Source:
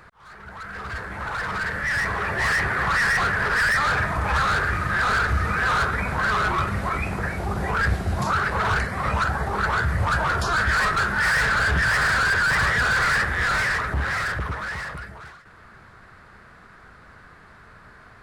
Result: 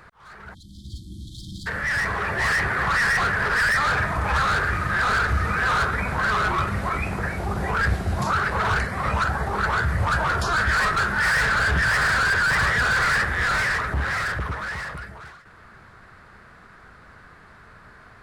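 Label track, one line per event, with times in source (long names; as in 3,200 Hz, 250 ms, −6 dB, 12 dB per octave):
0.540000	1.670000	time-frequency box erased 350–3,100 Hz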